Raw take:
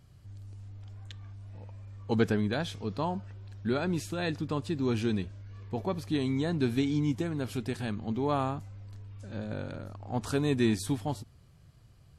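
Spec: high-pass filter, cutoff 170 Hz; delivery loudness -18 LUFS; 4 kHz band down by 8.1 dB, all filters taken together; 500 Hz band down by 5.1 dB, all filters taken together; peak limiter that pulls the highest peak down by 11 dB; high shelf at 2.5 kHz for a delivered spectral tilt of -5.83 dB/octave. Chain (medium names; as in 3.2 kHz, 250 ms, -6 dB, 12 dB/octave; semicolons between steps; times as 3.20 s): high-pass 170 Hz; peaking EQ 500 Hz -6.5 dB; treble shelf 2.5 kHz -7.5 dB; peaking EQ 4 kHz -3.5 dB; trim +20 dB; peak limiter -7 dBFS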